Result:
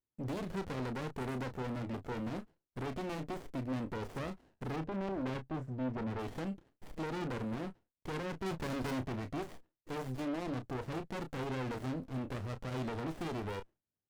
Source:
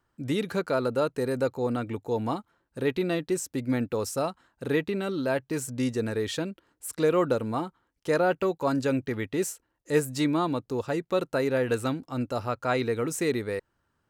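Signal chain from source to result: HPF 68 Hz 12 dB/oct; gate with hold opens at -54 dBFS; 4.76–6.19 LPF 1100 Hz 12 dB/oct; limiter -20.5 dBFS, peak gain reduction 9.5 dB; 8.46–9.03 sample leveller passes 3; soft clip -34.5 dBFS, distortion -7 dB; doubler 31 ms -9 dB; running maximum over 33 samples

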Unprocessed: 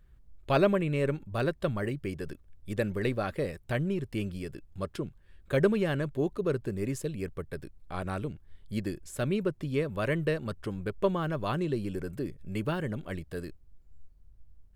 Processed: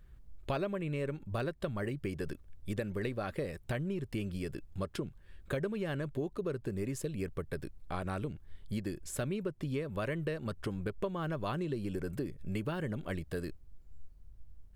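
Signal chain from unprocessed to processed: compressor 6:1, threshold -35 dBFS, peak gain reduction 15.5 dB; gain +2.5 dB

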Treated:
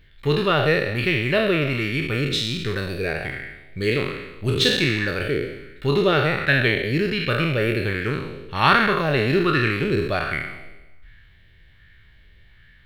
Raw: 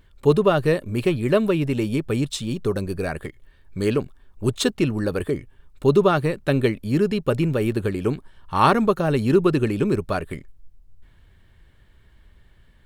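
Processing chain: spectral trails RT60 1.08 s; graphic EQ 125/250/500/1000/2000/4000/8000 Hz +3/-4/-4/-9/+10/+7/-10 dB; LFO bell 1.3 Hz 430–1700 Hz +7 dB; gain -2.5 dB

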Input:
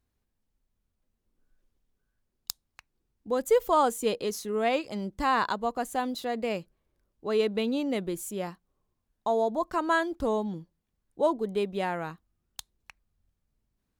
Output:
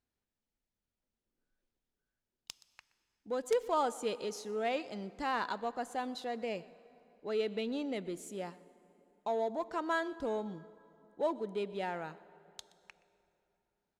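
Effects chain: on a send: echo 0.123 s -22.5 dB; on the sum: wrapped overs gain 13 dB; LPF 7600 Hz 12 dB/oct; in parallel at -10 dB: hard clip -29.5 dBFS, distortion -6 dB; on the sum: low shelf 120 Hz -12 dB; notch 1100 Hz, Q 9.3; plate-style reverb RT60 3.2 s, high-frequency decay 0.65×, DRR 18 dB; gain -8 dB

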